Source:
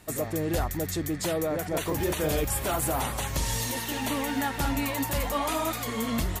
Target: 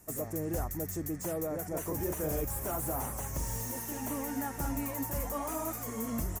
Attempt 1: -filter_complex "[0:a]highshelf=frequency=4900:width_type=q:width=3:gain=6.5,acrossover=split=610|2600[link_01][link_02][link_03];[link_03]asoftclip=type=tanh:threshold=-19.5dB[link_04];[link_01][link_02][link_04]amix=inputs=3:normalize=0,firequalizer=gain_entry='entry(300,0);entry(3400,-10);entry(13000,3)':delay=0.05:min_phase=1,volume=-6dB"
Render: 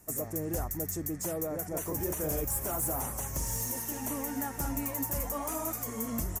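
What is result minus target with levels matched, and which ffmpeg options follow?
soft clipping: distortion −9 dB
-filter_complex "[0:a]highshelf=frequency=4900:width_type=q:width=3:gain=6.5,acrossover=split=610|2600[link_01][link_02][link_03];[link_03]asoftclip=type=tanh:threshold=-30dB[link_04];[link_01][link_02][link_04]amix=inputs=3:normalize=0,firequalizer=gain_entry='entry(300,0);entry(3400,-10);entry(13000,3)':delay=0.05:min_phase=1,volume=-6dB"

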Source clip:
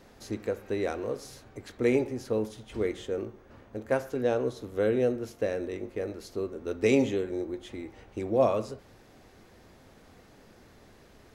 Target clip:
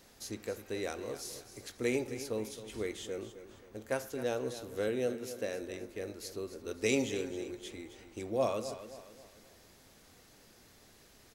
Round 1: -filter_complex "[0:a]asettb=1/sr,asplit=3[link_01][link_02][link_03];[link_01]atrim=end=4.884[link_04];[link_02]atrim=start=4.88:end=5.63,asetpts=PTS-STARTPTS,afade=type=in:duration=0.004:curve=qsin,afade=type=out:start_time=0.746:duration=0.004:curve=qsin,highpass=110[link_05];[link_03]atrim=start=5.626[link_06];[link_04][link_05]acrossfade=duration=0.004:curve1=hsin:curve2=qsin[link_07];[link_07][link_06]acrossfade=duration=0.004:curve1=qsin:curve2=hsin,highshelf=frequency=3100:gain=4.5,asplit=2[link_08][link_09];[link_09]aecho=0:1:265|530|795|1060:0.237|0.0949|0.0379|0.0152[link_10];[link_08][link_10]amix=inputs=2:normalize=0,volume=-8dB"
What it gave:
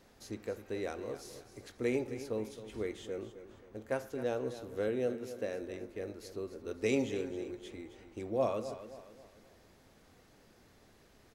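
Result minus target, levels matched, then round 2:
8,000 Hz band −8.0 dB
-filter_complex "[0:a]asettb=1/sr,asplit=3[link_01][link_02][link_03];[link_01]atrim=end=4.884[link_04];[link_02]atrim=start=4.88:end=5.63,asetpts=PTS-STARTPTS,afade=type=in:duration=0.004:curve=qsin,afade=type=out:start_time=0.746:duration=0.004:curve=qsin,highpass=110[link_05];[link_03]atrim=start=5.626[link_06];[link_04][link_05]acrossfade=duration=0.004:curve1=hsin:curve2=qsin[link_07];[link_07][link_06]acrossfade=duration=0.004:curve1=qsin:curve2=hsin,highshelf=frequency=3100:gain=15,asplit=2[link_08][link_09];[link_09]aecho=0:1:265|530|795|1060:0.237|0.0949|0.0379|0.0152[link_10];[link_08][link_10]amix=inputs=2:normalize=0,volume=-8dB"

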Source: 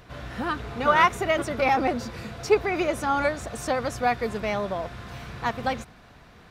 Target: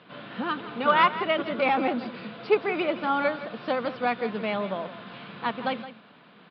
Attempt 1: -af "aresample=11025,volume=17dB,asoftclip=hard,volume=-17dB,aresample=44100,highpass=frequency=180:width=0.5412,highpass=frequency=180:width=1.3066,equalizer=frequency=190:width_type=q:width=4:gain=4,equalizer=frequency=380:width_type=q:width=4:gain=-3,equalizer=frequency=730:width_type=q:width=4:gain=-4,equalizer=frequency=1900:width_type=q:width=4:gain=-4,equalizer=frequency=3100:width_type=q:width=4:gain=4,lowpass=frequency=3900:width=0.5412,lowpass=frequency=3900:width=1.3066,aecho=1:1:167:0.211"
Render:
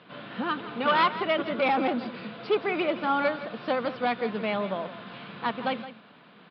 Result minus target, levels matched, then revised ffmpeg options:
gain into a clipping stage and back: distortion +16 dB
-af "aresample=11025,volume=10dB,asoftclip=hard,volume=-10dB,aresample=44100,highpass=frequency=180:width=0.5412,highpass=frequency=180:width=1.3066,equalizer=frequency=190:width_type=q:width=4:gain=4,equalizer=frequency=380:width_type=q:width=4:gain=-3,equalizer=frequency=730:width_type=q:width=4:gain=-4,equalizer=frequency=1900:width_type=q:width=4:gain=-4,equalizer=frequency=3100:width_type=q:width=4:gain=4,lowpass=frequency=3900:width=0.5412,lowpass=frequency=3900:width=1.3066,aecho=1:1:167:0.211"

